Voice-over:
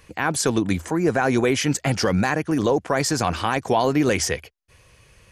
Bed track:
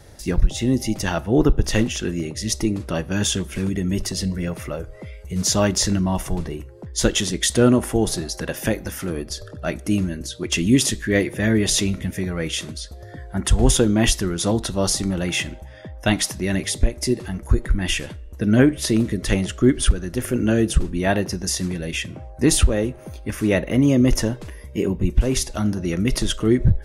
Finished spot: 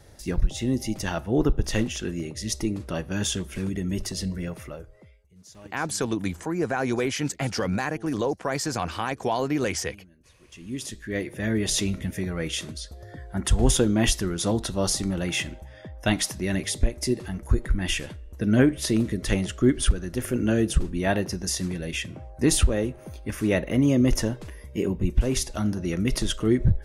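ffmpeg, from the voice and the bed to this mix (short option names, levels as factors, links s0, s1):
-filter_complex "[0:a]adelay=5550,volume=0.501[s0];[1:a]volume=10,afade=t=out:st=4.37:d=0.91:silence=0.0630957,afade=t=in:st=10.5:d=1.46:silence=0.0530884[s1];[s0][s1]amix=inputs=2:normalize=0"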